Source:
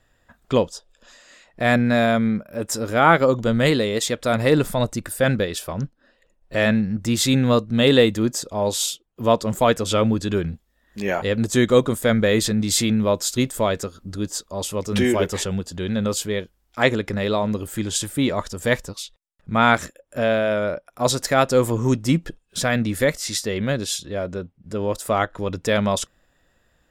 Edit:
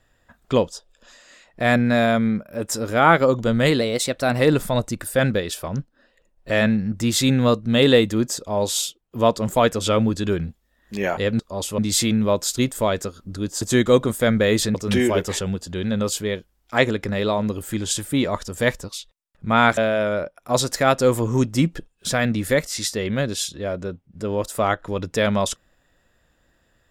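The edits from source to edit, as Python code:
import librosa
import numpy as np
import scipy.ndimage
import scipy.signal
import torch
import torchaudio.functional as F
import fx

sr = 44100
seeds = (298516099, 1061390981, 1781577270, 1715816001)

y = fx.edit(x, sr, fx.speed_span(start_s=3.81, length_s=0.63, speed=1.08),
    fx.swap(start_s=11.44, length_s=1.13, other_s=14.4, other_length_s=0.39),
    fx.cut(start_s=19.82, length_s=0.46), tone=tone)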